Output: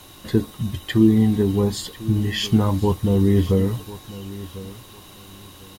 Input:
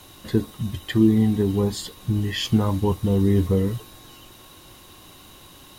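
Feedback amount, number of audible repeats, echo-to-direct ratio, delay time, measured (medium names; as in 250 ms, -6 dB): 23%, 2, -17.0 dB, 1047 ms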